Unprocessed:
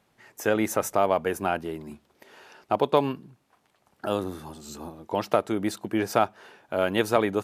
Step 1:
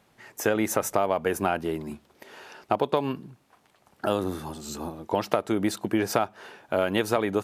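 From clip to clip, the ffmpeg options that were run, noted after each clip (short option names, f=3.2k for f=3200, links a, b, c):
-af "acompressor=threshold=-24dB:ratio=6,volume=4.5dB"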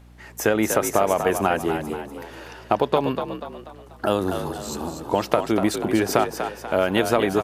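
-filter_complex "[0:a]aeval=exprs='val(0)+0.00282*(sin(2*PI*60*n/s)+sin(2*PI*2*60*n/s)/2+sin(2*PI*3*60*n/s)/3+sin(2*PI*4*60*n/s)/4+sin(2*PI*5*60*n/s)/5)':c=same,asplit=6[a][b][c][d][e][f];[b]adelay=243,afreqshift=53,volume=-8dB[g];[c]adelay=486,afreqshift=106,volume=-15.3dB[h];[d]adelay=729,afreqshift=159,volume=-22.7dB[i];[e]adelay=972,afreqshift=212,volume=-30dB[j];[f]adelay=1215,afreqshift=265,volume=-37.3dB[k];[a][g][h][i][j][k]amix=inputs=6:normalize=0,volume=4dB"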